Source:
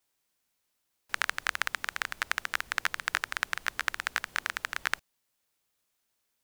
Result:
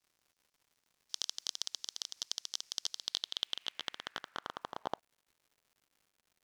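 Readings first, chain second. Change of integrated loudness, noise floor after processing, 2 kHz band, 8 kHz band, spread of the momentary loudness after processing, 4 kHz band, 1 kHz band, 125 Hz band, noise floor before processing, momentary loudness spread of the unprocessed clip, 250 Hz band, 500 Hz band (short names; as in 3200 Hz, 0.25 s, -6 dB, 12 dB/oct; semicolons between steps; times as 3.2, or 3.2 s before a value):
-7.5 dB, -84 dBFS, -21.5 dB, -1.0 dB, 7 LU, 0.0 dB, -10.5 dB, -7.5 dB, -79 dBFS, 3 LU, -2.0 dB, -2.0 dB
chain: full-wave rectifier; band-pass sweep 5400 Hz -> 310 Hz, 2.9–5.99; crackle 210/s -61 dBFS; gain +2.5 dB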